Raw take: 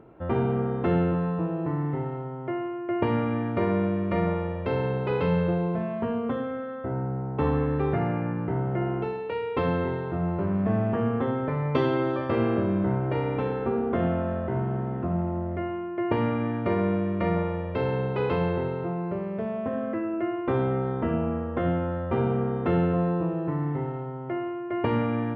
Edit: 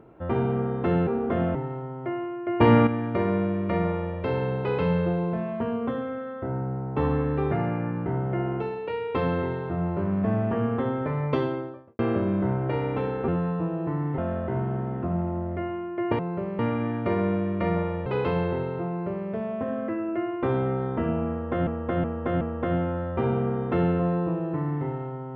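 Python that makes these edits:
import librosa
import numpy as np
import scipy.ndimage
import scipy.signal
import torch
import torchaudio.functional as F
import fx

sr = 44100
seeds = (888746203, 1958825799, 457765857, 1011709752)

y = fx.studio_fade_out(x, sr, start_s=11.61, length_s=0.8)
y = fx.edit(y, sr, fx.swap(start_s=1.07, length_s=0.9, other_s=13.7, other_length_s=0.48),
    fx.clip_gain(start_s=3.03, length_s=0.26, db=8.5),
    fx.cut(start_s=17.66, length_s=0.45),
    fx.duplicate(start_s=18.93, length_s=0.4, to_s=16.19),
    fx.repeat(start_s=21.35, length_s=0.37, count=4), tone=tone)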